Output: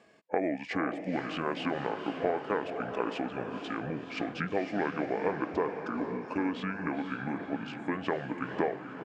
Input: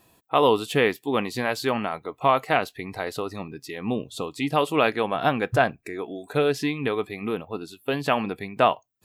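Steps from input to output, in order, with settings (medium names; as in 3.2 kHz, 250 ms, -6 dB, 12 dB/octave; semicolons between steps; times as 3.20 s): compression 6:1, threshold -29 dBFS, peak gain reduction 14.5 dB; pitch shift -7.5 st; band-pass 250–3100 Hz; echo that smears into a reverb 498 ms, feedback 48%, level -7 dB; trim +2.5 dB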